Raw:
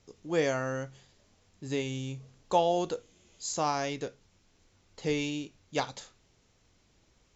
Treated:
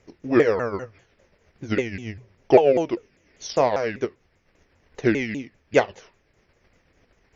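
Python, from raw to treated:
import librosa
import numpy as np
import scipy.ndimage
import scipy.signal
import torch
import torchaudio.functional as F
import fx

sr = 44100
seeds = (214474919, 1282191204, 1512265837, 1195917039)

p1 = fx.pitch_ramps(x, sr, semitones=-6.5, every_ms=198)
p2 = fx.graphic_eq(p1, sr, hz=(500, 2000, 4000), db=(7, 8, -9))
p3 = np.clip(p2, -10.0 ** (-17.5 / 20.0), 10.0 ** (-17.5 / 20.0))
p4 = p2 + (p3 * librosa.db_to_amplitude(-11.5))
p5 = fx.transient(p4, sr, attack_db=6, sustain_db=-3)
y = p5 * librosa.db_to_amplitude(2.0)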